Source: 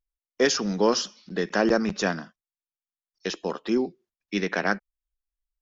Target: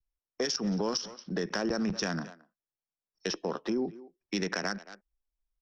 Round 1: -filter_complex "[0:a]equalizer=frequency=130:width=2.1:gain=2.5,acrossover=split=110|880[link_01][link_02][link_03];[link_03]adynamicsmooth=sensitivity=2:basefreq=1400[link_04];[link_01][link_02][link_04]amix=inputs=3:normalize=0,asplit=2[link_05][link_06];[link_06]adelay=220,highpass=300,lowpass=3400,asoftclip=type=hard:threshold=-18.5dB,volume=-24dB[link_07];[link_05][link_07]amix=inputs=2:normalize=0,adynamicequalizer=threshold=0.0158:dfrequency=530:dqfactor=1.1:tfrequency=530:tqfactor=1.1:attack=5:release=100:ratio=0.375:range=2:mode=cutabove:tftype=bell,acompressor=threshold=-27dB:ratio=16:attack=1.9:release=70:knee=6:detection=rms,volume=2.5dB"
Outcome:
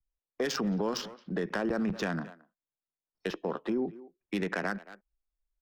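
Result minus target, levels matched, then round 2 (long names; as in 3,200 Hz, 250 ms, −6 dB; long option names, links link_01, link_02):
4,000 Hz band −5.0 dB
-filter_complex "[0:a]equalizer=frequency=130:width=2.1:gain=2.5,acrossover=split=110|880[link_01][link_02][link_03];[link_03]adynamicsmooth=sensitivity=2:basefreq=1400[link_04];[link_01][link_02][link_04]amix=inputs=3:normalize=0,asplit=2[link_05][link_06];[link_06]adelay=220,highpass=300,lowpass=3400,asoftclip=type=hard:threshold=-18.5dB,volume=-24dB[link_07];[link_05][link_07]amix=inputs=2:normalize=0,adynamicequalizer=threshold=0.0158:dfrequency=530:dqfactor=1.1:tfrequency=530:tqfactor=1.1:attack=5:release=100:ratio=0.375:range=2:mode=cutabove:tftype=bell,lowpass=frequency=5600:width_type=q:width=14,acompressor=threshold=-27dB:ratio=16:attack=1.9:release=70:knee=6:detection=rms,volume=2.5dB"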